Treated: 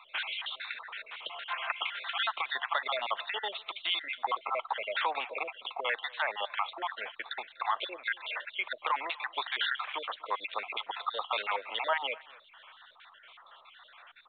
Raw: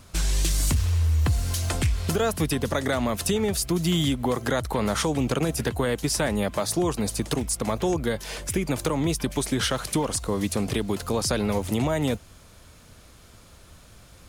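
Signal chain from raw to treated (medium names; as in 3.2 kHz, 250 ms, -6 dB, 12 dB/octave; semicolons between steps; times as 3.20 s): random holes in the spectrogram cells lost 52%; high-pass 850 Hz 24 dB/octave; 0.87–2.08 s: dynamic bell 1.2 kHz, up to +5 dB, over -51 dBFS, Q 0.96; peak limiter -25 dBFS, peak gain reduction 9.5 dB; on a send: delay 244 ms -23 dB; on the sum: trim +6.5 dB; µ-law 64 kbps 8 kHz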